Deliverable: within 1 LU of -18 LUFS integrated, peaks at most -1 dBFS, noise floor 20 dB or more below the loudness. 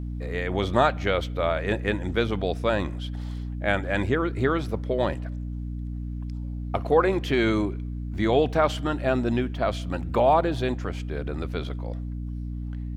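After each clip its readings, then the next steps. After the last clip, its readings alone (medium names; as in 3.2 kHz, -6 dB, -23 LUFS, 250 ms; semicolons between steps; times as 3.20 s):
hum 60 Hz; highest harmonic 300 Hz; hum level -29 dBFS; loudness -26.5 LUFS; peak level -5.5 dBFS; loudness target -18.0 LUFS
-> de-hum 60 Hz, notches 5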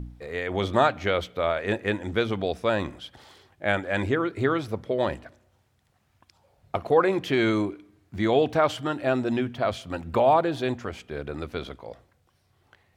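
hum not found; loudness -26.0 LUFS; peak level -6.5 dBFS; loudness target -18.0 LUFS
-> trim +8 dB; peak limiter -1 dBFS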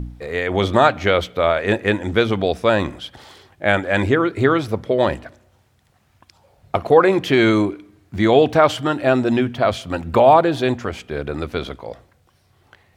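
loudness -18.0 LUFS; peak level -1.0 dBFS; noise floor -59 dBFS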